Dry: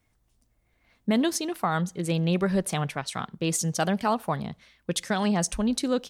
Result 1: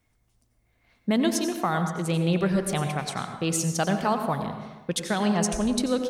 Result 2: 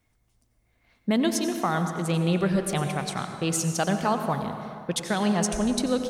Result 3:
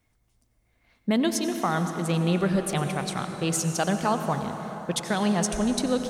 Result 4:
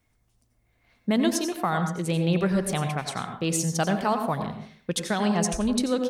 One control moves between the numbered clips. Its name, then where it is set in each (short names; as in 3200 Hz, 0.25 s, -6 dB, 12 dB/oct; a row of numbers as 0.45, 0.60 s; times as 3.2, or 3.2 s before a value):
plate-style reverb, RT60: 1.2, 2.5, 5.1, 0.52 s